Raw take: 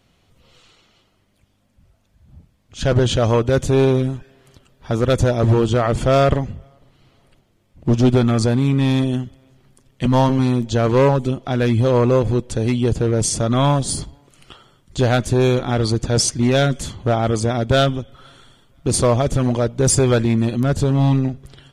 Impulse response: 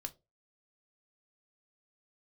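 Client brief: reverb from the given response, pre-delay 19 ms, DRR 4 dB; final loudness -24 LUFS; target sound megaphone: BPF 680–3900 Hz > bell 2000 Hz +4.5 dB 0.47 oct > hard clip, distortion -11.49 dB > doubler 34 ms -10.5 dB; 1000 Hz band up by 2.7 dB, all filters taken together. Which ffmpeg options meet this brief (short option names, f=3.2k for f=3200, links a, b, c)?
-filter_complex "[0:a]equalizer=f=1k:t=o:g=5,asplit=2[a][b];[1:a]atrim=start_sample=2205,adelay=19[c];[b][c]afir=irnorm=-1:irlink=0,volume=-1.5dB[d];[a][d]amix=inputs=2:normalize=0,highpass=680,lowpass=3.9k,equalizer=f=2k:t=o:w=0.47:g=4.5,asoftclip=type=hard:threshold=-14.5dB,asplit=2[e][f];[f]adelay=34,volume=-10.5dB[g];[e][g]amix=inputs=2:normalize=0,volume=-0.5dB"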